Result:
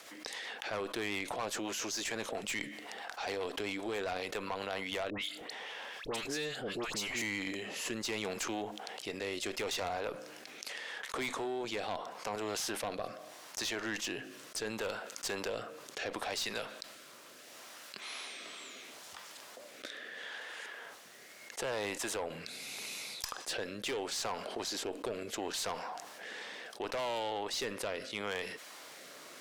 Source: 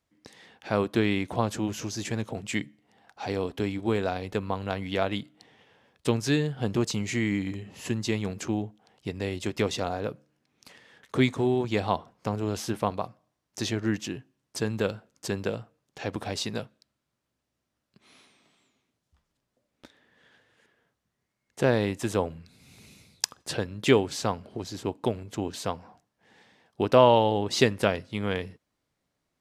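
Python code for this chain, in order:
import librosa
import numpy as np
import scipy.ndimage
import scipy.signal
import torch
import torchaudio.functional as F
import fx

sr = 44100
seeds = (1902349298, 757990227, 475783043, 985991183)

y = scipy.signal.sosfilt(scipy.signal.butter(2, 630.0, 'highpass', fs=sr, output='sos'), x)
y = fx.rider(y, sr, range_db=10, speed_s=2.0)
y = fx.rotary_switch(y, sr, hz=7.5, then_hz=0.75, switch_at_s=4.59)
y = fx.tube_stage(y, sr, drive_db=30.0, bias=0.3)
y = fx.dispersion(y, sr, late='highs', ms=95.0, hz=1500.0, at=(5.1, 7.22))
y = fx.env_flatten(y, sr, amount_pct=70)
y = y * librosa.db_to_amplitude(-3.0)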